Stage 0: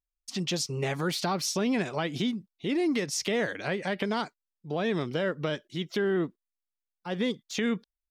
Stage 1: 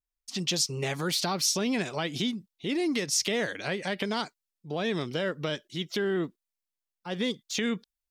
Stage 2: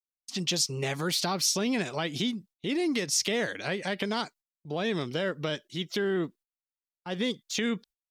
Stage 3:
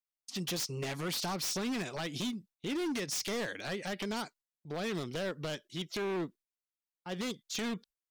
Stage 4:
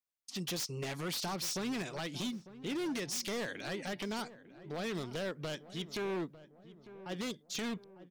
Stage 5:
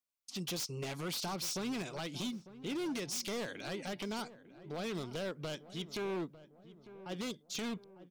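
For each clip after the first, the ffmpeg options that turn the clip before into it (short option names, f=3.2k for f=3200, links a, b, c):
-af "adynamicequalizer=threshold=0.00447:dfrequency=2600:dqfactor=0.7:tfrequency=2600:tqfactor=0.7:attack=5:release=100:ratio=0.375:range=3.5:mode=boostabove:tftype=highshelf,volume=-1.5dB"
-af "agate=range=-25dB:threshold=-52dB:ratio=16:detection=peak"
-af "aeval=exprs='0.0562*(abs(mod(val(0)/0.0562+3,4)-2)-1)':c=same,volume=-4.5dB"
-filter_complex "[0:a]asplit=2[a][b];[b]adelay=900,lowpass=f=1.2k:p=1,volume=-15dB,asplit=2[c][d];[d]adelay=900,lowpass=f=1.2k:p=1,volume=0.51,asplit=2[e][f];[f]adelay=900,lowpass=f=1.2k:p=1,volume=0.51,asplit=2[g][h];[h]adelay=900,lowpass=f=1.2k:p=1,volume=0.51,asplit=2[i][j];[j]adelay=900,lowpass=f=1.2k:p=1,volume=0.51[k];[a][c][e][g][i][k]amix=inputs=6:normalize=0,volume=-2dB"
-af "equalizer=f=1.8k:t=o:w=0.21:g=-6.5,volume=-1dB"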